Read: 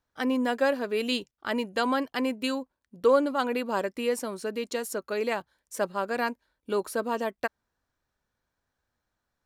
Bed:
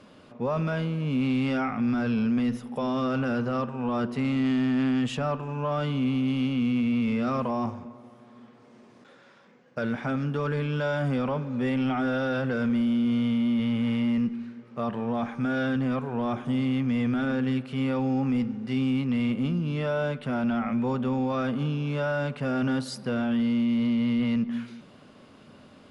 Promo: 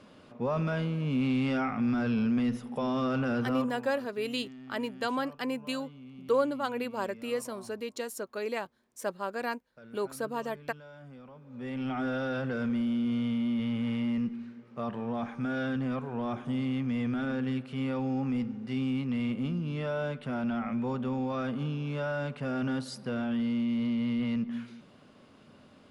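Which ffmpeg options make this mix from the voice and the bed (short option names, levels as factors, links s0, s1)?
-filter_complex "[0:a]adelay=3250,volume=0.562[s0];[1:a]volume=5.62,afade=t=out:st=3.41:d=0.51:silence=0.1,afade=t=in:st=11.41:d=0.61:silence=0.133352[s1];[s0][s1]amix=inputs=2:normalize=0"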